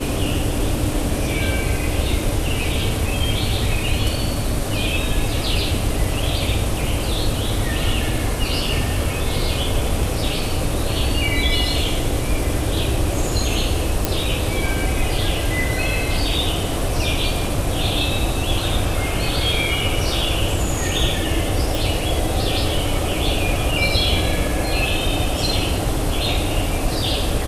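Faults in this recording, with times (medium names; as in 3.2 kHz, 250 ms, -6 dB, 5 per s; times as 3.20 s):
14.05 s: pop
21.75 s: pop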